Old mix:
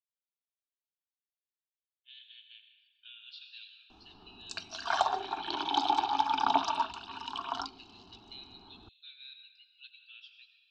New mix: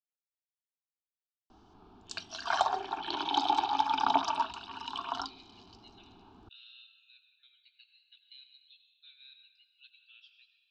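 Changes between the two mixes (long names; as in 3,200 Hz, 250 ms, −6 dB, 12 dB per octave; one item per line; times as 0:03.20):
speech −5.5 dB
background: entry −2.40 s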